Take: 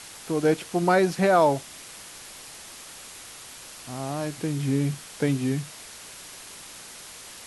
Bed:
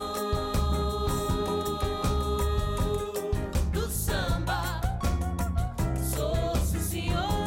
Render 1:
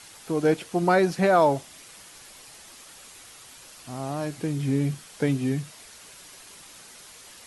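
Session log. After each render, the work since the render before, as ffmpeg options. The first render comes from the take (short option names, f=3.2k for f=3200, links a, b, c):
-af "afftdn=nr=6:nf=-44"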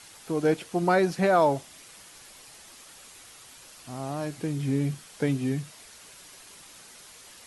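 -af "volume=-2dB"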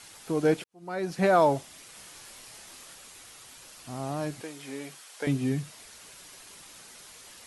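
-filter_complex "[0:a]asettb=1/sr,asplit=3[a][b][c];[a]atrim=end=1.934[d];[b]atrim=start=1.93:end=2.95,asetpts=PTS-STARTPTS,afade=t=in:d=0.004:c=qsin,afade=t=out:st=1.016:d=0.004:c=qsin,asplit=2[e][f];[f]adelay=27,volume=-4dB[g];[e][g]amix=inputs=2:normalize=0,atrim=end_sample=44982[h];[c]atrim=start=2.946[i];[d][h]acrossfade=d=0.004:c1=hsin:c2=qsin[j];[j][i]acrossfade=d=0.004:c1=qsin:c2=hsin,asettb=1/sr,asplit=3[k][l][m];[k]atrim=end=4.414[n];[l]atrim=start=4.41:end=5.27,asetpts=PTS-STARTPTS,afade=t=in:d=0.004:c=qsin,afade=t=out:st=0.856:d=0.004:c=qsin,highpass=570[o];[m]atrim=start=5.266[p];[n][o]acrossfade=d=0.004:c1=hsin:c2=qsin[q];[q][p]acrossfade=d=0.004:c1=qsin:c2=hsin,asplit=2[r][s];[r]atrim=end=0.64,asetpts=PTS-STARTPTS,afade=t=out:st=0.636:d=0.004:c=hsin[t];[s]atrim=start=0.64,asetpts=PTS-STARTPTS,afade=t=in:d=0.61:c=qua[u];[t][u]concat=n=2:v=0:a=1"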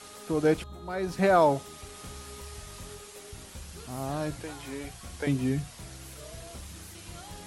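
-filter_complex "[1:a]volume=-17.5dB[a];[0:a][a]amix=inputs=2:normalize=0"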